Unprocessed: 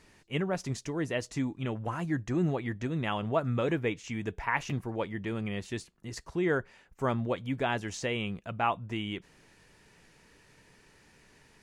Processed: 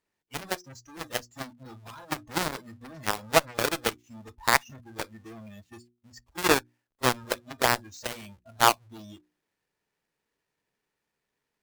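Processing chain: half-waves squared off; spectral noise reduction 20 dB; low shelf 200 Hz -11 dB; notches 60/120/180/240/300/360 Hz; added harmonics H 7 -15 dB, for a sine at -10.5 dBFS; gain +7 dB

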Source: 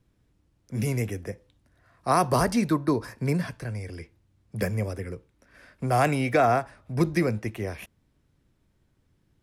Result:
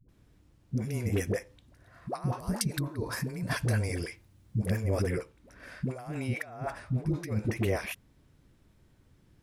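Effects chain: 2.3–4.59 high shelf 6600 Hz +7 dB; negative-ratio compressor -30 dBFS, ratio -0.5; dispersion highs, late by 88 ms, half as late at 430 Hz

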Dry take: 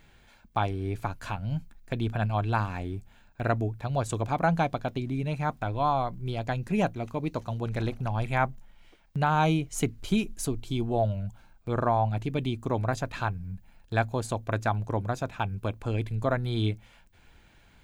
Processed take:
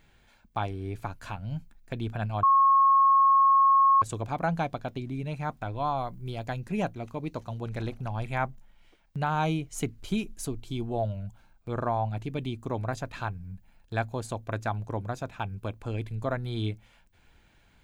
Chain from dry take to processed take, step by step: 2.43–4.02 bleep 1090 Hz -13 dBFS; 5.98–6.6 high shelf 8500 Hz +7 dB; gain -3.5 dB

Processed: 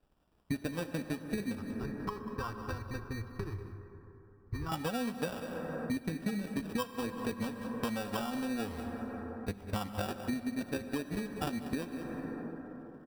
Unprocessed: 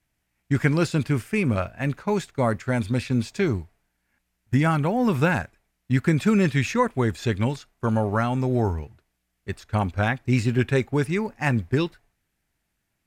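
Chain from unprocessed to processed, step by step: comb 4 ms, depth 91%; sample-and-hold 21×; transient shaper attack +5 dB, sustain -11 dB; 1.55–4.72 EQ curve 120 Hz 0 dB, 230 Hz -30 dB, 380 Hz -6 dB, 580 Hz -26 dB, 1100 Hz -5 dB, 1800 Hz -16 dB, 3500 Hz -23 dB, 5100 Hz -14 dB, 7700 Hz -25 dB, 13000 Hz -21 dB; echo 0.19 s -18.5 dB; plate-style reverb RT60 3.4 s, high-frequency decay 0.35×, DRR 11.5 dB; compressor 6:1, threshold -34 dBFS, peak gain reduction 25 dB; notch 6700 Hz, Q 5.1

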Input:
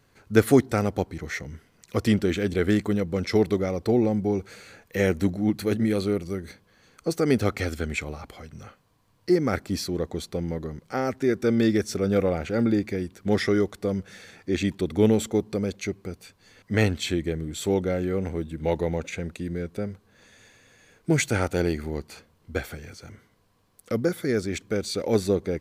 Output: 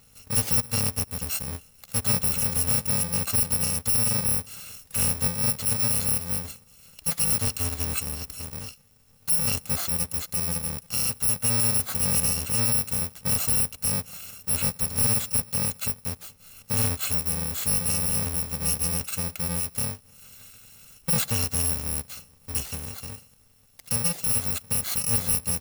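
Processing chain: FFT order left unsorted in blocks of 128 samples; in parallel at +1 dB: compressor, threshold -34 dBFS, peak gain reduction 21 dB; on the sum: soft clip -18 dBFS, distortion -11 dB

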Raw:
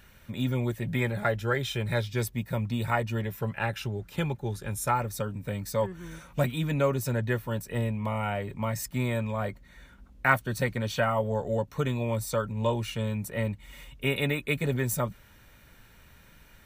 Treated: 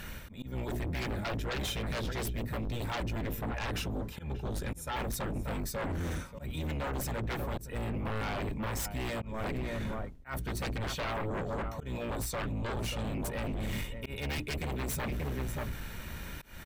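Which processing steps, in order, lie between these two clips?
octaver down 1 oct, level +2 dB; notches 60/120/180/240/300/360/420 Hz; outdoor echo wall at 100 m, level -15 dB; reverse; compressor 10:1, threshold -37 dBFS, peak gain reduction 20.5 dB; reverse; auto swell 0.251 s; sine folder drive 14 dB, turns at -25 dBFS; gain -6 dB

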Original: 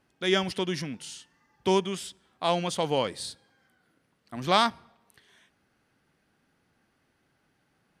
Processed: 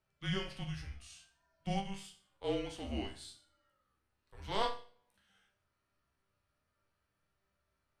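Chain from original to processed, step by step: frequency shift -210 Hz; harmonic-percussive split percussive -10 dB; resonator bank C2 minor, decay 0.41 s; gain +4 dB

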